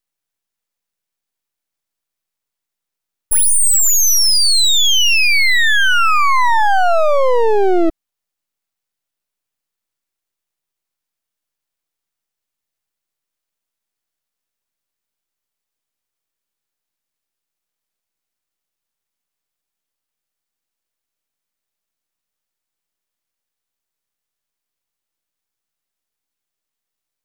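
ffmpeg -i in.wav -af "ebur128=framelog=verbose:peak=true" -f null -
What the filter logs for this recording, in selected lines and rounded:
Integrated loudness:
  I:         -11.8 LUFS
  Threshold: -21.9 LUFS
Loudness range:
  LRA:        10.3 LU
  Threshold: -33.7 LUFS
  LRA low:   -21.2 LUFS
  LRA high:  -10.9 LUFS
True peak:
  Peak:       -4.7 dBFS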